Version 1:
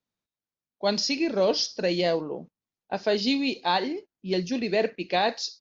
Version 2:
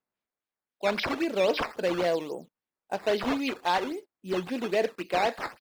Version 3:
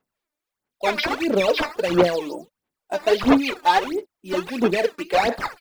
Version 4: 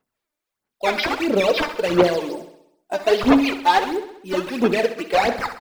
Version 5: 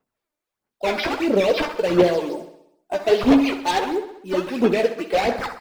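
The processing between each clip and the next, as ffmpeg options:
-filter_complex "[0:a]acrusher=samples=10:mix=1:aa=0.000001:lfo=1:lforange=10:lforate=3.7,acrossover=split=5400[a][b];[b]acompressor=threshold=-50dB:ratio=4:attack=1:release=60[c];[a][c]amix=inputs=2:normalize=0,bass=f=250:g=-7,treble=f=4k:g=-3,volume=-1dB"
-af "aphaser=in_gain=1:out_gain=1:delay=3.4:decay=0.7:speed=1.5:type=sinusoidal,volume=4dB"
-af "aecho=1:1:65|130|195|260|325|390|455:0.224|0.134|0.0806|0.0484|0.029|0.0174|0.0104,volume=1dB"
-filter_complex "[0:a]acrossover=split=680|1500[a][b][c];[a]crystalizer=i=9.5:c=0[d];[b]aeval=exprs='0.0473*(abs(mod(val(0)/0.0473+3,4)-2)-1)':c=same[e];[c]flanger=delay=15:depth=2:speed=1.1[f];[d][e][f]amix=inputs=3:normalize=0"

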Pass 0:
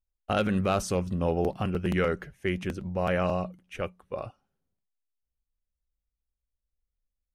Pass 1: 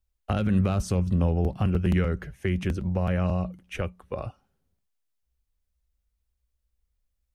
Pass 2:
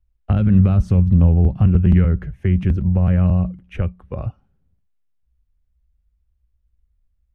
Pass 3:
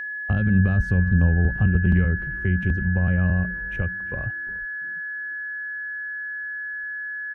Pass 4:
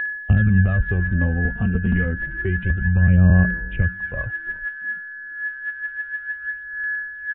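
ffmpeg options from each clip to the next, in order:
-filter_complex "[0:a]equalizer=f=65:w=1.6:g=8.5,acrossover=split=220[a][b];[b]acompressor=threshold=-35dB:ratio=6[c];[a][c]amix=inputs=2:normalize=0,volume=5.5dB"
-af "bass=f=250:g=12,treble=f=4k:g=-14"
-filter_complex "[0:a]aeval=exprs='val(0)+0.0708*sin(2*PI*1700*n/s)':c=same,asplit=4[a][b][c][d];[b]adelay=348,afreqshift=-140,volume=-18dB[e];[c]adelay=696,afreqshift=-280,volume=-27.9dB[f];[d]adelay=1044,afreqshift=-420,volume=-37.8dB[g];[a][e][f][g]amix=inputs=4:normalize=0,volume=-5.5dB"
-af "aphaser=in_gain=1:out_gain=1:delay=4.4:decay=0.6:speed=0.29:type=sinusoidal,aresample=8000,aresample=44100"

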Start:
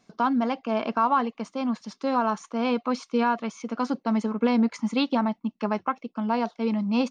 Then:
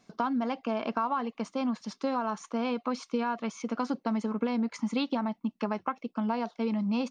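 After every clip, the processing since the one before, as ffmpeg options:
-af "acompressor=threshold=-26dB:ratio=6"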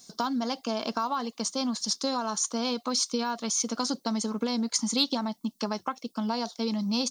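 -af "aexciter=amount=5.2:drive=9.2:freq=3.7k"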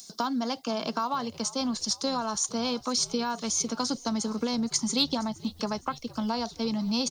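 -filter_complex "[0:a]acrossover=split=290|880|2500[a][b][c][d];[d]acompressor=mode=upward:threshold=-42dB:ratio=2.5[e];[a][b][c][e]amix=inputs=4:normalize=0,asplit=5[f][g][h][i][j];[g]adelay=466,afreqshift=-71,volume=-19.5dB[k];[h]adelay=932,afreqshift=-142,volume=-25.3dB[l];[i]adelay=1398,afreqshift=-213,volume=-31.2dB[m];[j]adelay=1864,afreqshift=-284,volume=-37dB[n];[f][k][l][m][n]amix=inputs=5:normalize=0"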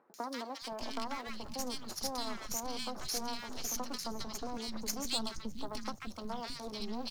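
-filter_complex "[0:a]aeval=exprs='max(val(0),0)':c=same,acrossover=split=240|1400[a][b][c];[c]adelay=140[d];[a]adelay=620[e];[e][b][d]amix=inputs=3:normalize=0,volume=-4.5dB"

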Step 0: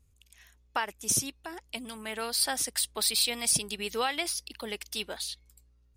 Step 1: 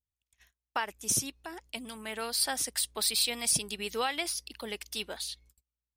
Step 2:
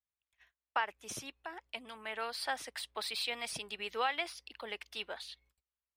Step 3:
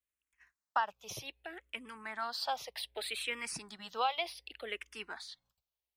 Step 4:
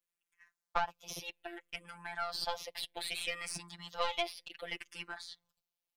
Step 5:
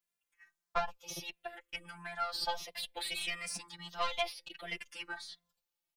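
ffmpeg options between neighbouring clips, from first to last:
-af "agate=range=-28dB:threshold=-55dB:ratio=16:detection=peak,volume=-1.5dB"
-filter_complex "[0:a]acrossover=split=480 3400:gain=0.224 1 0.112[a][b][c];[a][b][c]amix=inputs=3:normalize=0"
-filter_complex "[0:a]asplit=2[a][b];[b]afreqshift=-0.65[c];[a][c]amix=inputs=2:normalize=1,volume=3dB"
-af "aeval=exprs='(tanh(17.8*val(0)+0.55)-tanh(0.55))/17.8':c=same,afftfilt=real='hypot(re,im)*cos(PI*b)':imag='0':win_size=1024:overlap=0.75,volume=6dB"
-filter_complex "[0:a]asplit=2[a][b];[b]adelay=2.6,afreqshift=1.5[c];[a][c]amix=inputs=2:normalize=1,volume=4dB"

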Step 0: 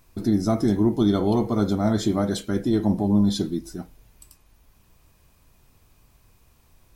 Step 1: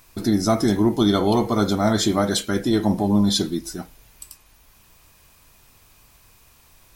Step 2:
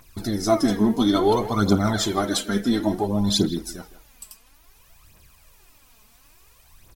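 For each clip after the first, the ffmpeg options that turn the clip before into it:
-af "tiltshelf=f=670:g=-5,volume=5dB"
-filter_complex "[0:a]aphaser=in_gain=1:out_gain=1:delay=4.8:decay=0.63:speed=0.58:type=triangular,asplit=2[a][b];[b]adelay=160,highpass=300,lowpass=3.4k,asoftclip=type=hard:threshold=-12dB,volume=-13dB[c];[a][c]amix=inputs=2:normalize=0,volume=-3.5dB"

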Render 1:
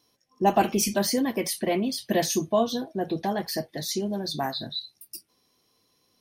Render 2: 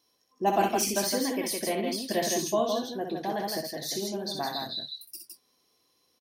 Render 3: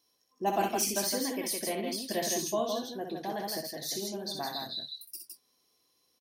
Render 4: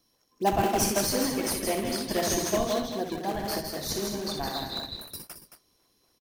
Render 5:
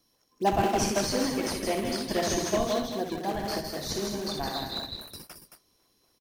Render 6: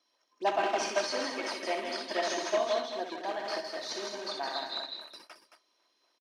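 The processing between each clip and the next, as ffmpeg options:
-filter_complex "[0:a]bass=f=250:g=-7,treble=f=4k:g=1,asplit=2[a][b];[b]aecho=0:1:62|162:0.531|0.631[c];[a][c]amix=inputs=2:normalize=0,volume=-4dB"
-af "equalizer=f=14k:t=o:w=2:g=4.5,volume=-4.5dB"
-filter_complex "[0:a]asplit=2[a][b];[b]acrusher=samples=38:mix=1:aa=0.000001:lfo=1:lforange=60.8:lforate=3.9,volume=-5dB[c];[a][c]amix=inputs=2:normalize=0,aecho=1:1:221:0.355,volume=2dB"
-filter_complex "[0:a]acrossover=split=7000[a][b];[b]acompressor=threshold=-45dB:ratio=4:attack=1:release=60[c];[a][c]amix=inputs=2:normalize=0"
-af "highpass=600,lowpass=4.2k,aecho=1:1:3.2:0.38"

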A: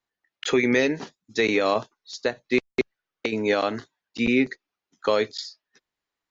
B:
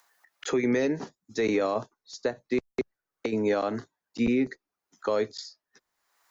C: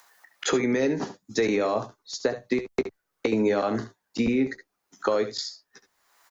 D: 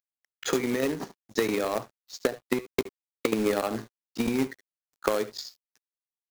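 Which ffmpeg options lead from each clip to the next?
-filter_complex "[0:a]equalizer=f=3k:w=0.88:g=-10.5,acrossover=split=120|690[a][b][c];[c]acompressor=mode=upward:threshold=-47dB:ratio=2.5[d];[a][b][d]amix=inputs=3:normalize=0,alimiter=limit=-16.5dB:level=0:latency=1:release=99"
-filter_complex "[0:a]acompressor=threshold=-28dB:ratio=6,asplit=2[a][b];[b]aecho=0:1:15|69|79:0.237|0.211|0.168[c];[a][c]amix=inputs=2:normalize=0,volume=7.5dB"
-af "acrusher=bits=4:mode=log:mix=0:aa=0.000001,aeval=exprs='0.282*(cos(1*acos(clip(val(0)/0.282,-1,1)))-cos(1*PI/2))+0.0501*(cos(3*acos(clip(val(0)/0.282,-1,1)))-cos(3*PI/2))':c=same,aeval=exprs='sgn(val(0))*max(abs(val(0))-0.00316,0)':c=same,volume=1.5dB"

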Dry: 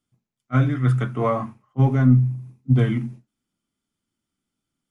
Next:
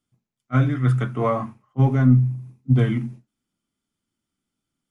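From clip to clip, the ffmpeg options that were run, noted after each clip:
-af anull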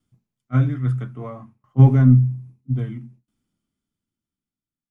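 -af "lowshelf=f=280:g=9,aeval=exprs='val(0)*pow(10,-22*if(lt(mod(0.61*n/s,1),2*abs(0.61)/1000),1-mod(0.61*n/s,1)/(2*abs(0.61)/1000),(mod(0.61*n/s,1)-2*abs(0.61)/1000)/(1-2*abs(0.61)/1000))/20)':c=same,volume=2dB"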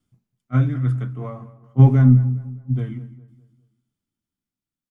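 -filter_complex "[0:a]asplit=2[a][b];[b]adelay=205,lowpass=f=2k:p=1,volume=-16.5dB,asplit=2[c][d];[d]adelay=205,lowpass=f=2k:p=1,volume=0.41,asplit=2[e][f];[f]adelay=205,lowpass=f=2k:p=1,volume=0.41,asplit=2[g][h];[h]adelay=205,lowpass=f=2k:p=1,volume=0.41[i];[a][c][e][g][i]amix=inputs=5:normalize=0"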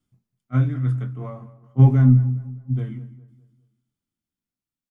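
-filter_complex "[0:a]asplit=2[a][b];[b]adelay=23,volume=-12dB[c];[a][c]amix=inputs=2:normalize=0,volume=-3dB"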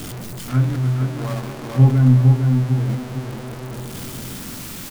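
-filter_complex "[0:a]aeval=exprs='val(0)+0.5*0.0562*sgn(val(0))':c=same,asplit=2[a][b];[b]adelay=454,lowpass=f=2k:p=1,volume=-4.5dB,asplit=2[c][d];[d]adelay=454,lowpass=f=2k:p=1,volume=0.38,asplit=2[e][f];[f]adelay=454,lowpass=f=2k:p=1,volume=0.38,asplit=2[g][h];[h]adelay=454,lowpass=f=2k:p=1,volume=0.38,asplit=2[i][j];[j]adelay=454,lowpass=f=2k:p=1,volume=0.38[k];[a][c][e][g][i][k]amix=inputs=6:normalize=0"

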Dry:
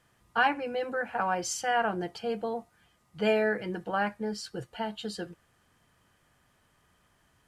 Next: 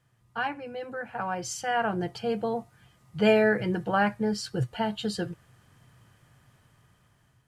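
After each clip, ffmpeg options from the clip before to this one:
-af "equalizer=f=120:w=1.9:g=14,dynaudnorm=f=730:g=5:m=11dB,volume=-6dB"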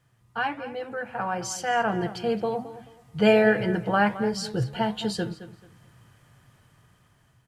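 -filter_complex "[0:a]flanger=delay=7:depth=4:regen=-86:speed=1.4:shape=sinusoidal,asplit=2[a][b];[b]adelay=217,lowpass=f=4.4k:p=1,volume=-14dB,asplit=2[c][d];[d]adelay=217,lowpass=f=4.4k:p=1,volume=0.26,asplit=2[e][f];[f]adelay=217,lowpass=f=4.4k:p=1,volume=0.26[g];[a][c][e][g]amix=inputs=4:normalize=0,volume=7dB"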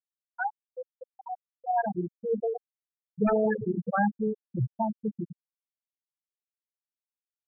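-af "bandreject=f=47.08:t=h:w=4,bandreject=f=94.16:t=h:w=4,bandreject=f=141.24:t=h:w=4,bandreject=f=188.32:t=h:w=4,bandreject=f=235.4:t=h:w=4,bandreject=f=282.48:t=h:w=4,bandreject=f=329.56:t=h:w=4,bandreject=f=376.64:t=h:w=4,bandreject=f=423.72:t=h:w=4,bandreject=f=470.8:t=h:w=4,bandreject=f=517.88:t=h:w=4,bandreject=f=564.96:t=h:w=4,bandreject=f=612.04:t=h:w=4,aeval=exprs='0.168*(abs(mod(val(0)/0.168+3,4)-2)-1)':c=same,afftfilt=real='re*gte(hypot(re,im),0.316)':imag='im*gte(hypot(re,im),0.316)':win_size=1024:overlap=0.75"

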